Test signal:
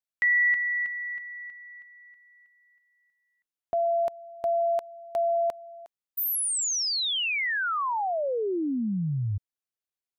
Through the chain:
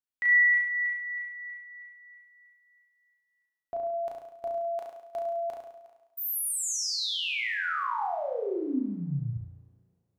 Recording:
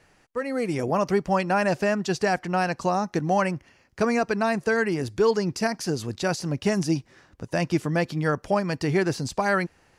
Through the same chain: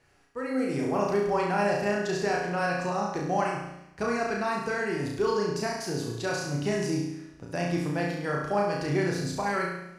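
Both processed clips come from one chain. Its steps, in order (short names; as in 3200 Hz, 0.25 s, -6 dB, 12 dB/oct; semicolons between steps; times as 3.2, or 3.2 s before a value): flutter echo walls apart 5.9 m, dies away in 0.78 s; two-slope reverb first 0.61 s, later 3 s, from -28 dB, DRR 6 dB; gain -7.5 dB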